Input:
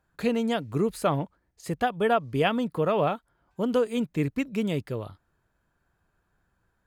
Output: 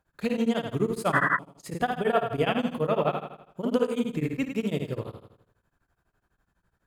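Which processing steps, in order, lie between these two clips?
flutter between parallel walls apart 9.1 metres, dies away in 0.76 s
sound drawn into the spectrogram noise, 0:01.12–0:01.39, 980–2,000 Hz −21 dBFS
tremolo along a rectified sine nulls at 12 Hz

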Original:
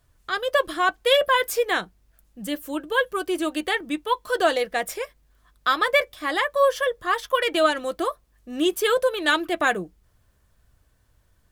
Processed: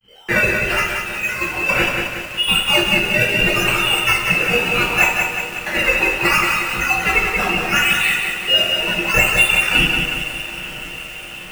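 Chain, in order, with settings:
voice inversion scrambler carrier 3,100 Hz
in parallel at −4 dB: sample-and-hold swept by an LFO 14×, swing 100% 0.72 Hz
on the sum: compressor whose output falls as the input rises −25 dBFS, ratio −0.5
downward expander −51 dBFS
on a send: feedback delay with all-pass diffusion 913 ms, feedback 67%, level −15 dB
on the sum: coupled-rooms reverb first 0.49 s, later 2.4 s, from −22 dB, DRR −9.5 dB
feedback echo at a low word length 183 ms, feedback 55%, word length 6 bits, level −4.5 dB
level −1.5 dB

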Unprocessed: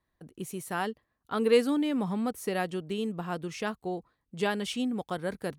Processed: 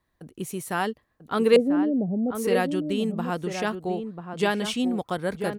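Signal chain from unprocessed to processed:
0:01.56–0:02.35: elliptic low-pass filter 670 Hz, stop band 40 dB
slap from a distant wall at 170 metres, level −7 dB
level +5 dB

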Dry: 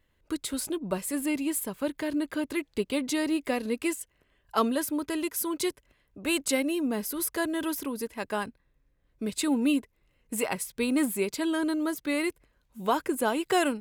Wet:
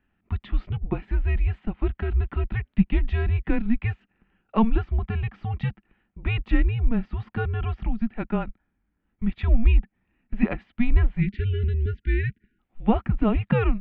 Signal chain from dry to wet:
hollow resonant body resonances 260/430 Hz, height 13 dB, ringing for 55 ms
single-sideband voice off tune −230 Hz 150–3,100 Hz
time-frequency box erased 0:11.21–0:12.59, 450–1,400 Hz

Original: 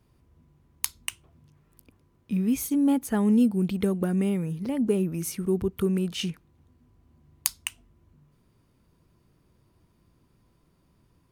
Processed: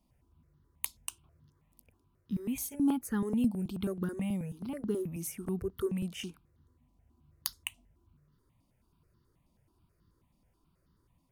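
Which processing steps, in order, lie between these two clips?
step-sequenced phaser 9.3 Hz 420–2,400 Hz
level −4.5 dB

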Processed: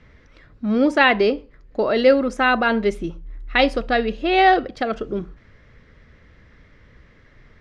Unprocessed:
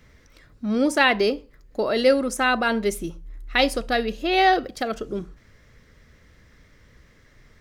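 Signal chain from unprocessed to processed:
low-pass filter 3,300 Hz 12 dB per octave
level +3.5 dB

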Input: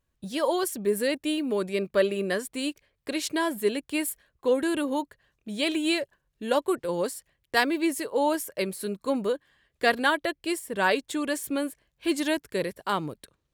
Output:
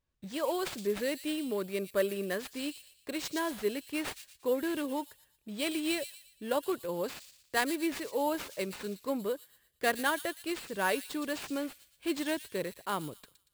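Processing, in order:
sample-rate reduction 12,000 Hz, jitter 0%
delay with a high-pass on its return 117 ms, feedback 40%, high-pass 4,400 Hz, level −4.5 dB
level −6.5 dB

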